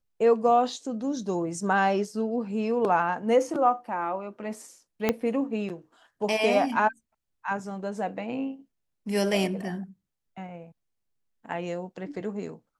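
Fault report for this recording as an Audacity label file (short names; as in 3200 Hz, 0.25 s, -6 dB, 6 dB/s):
5.090000	5.090000	pop -9 dBFS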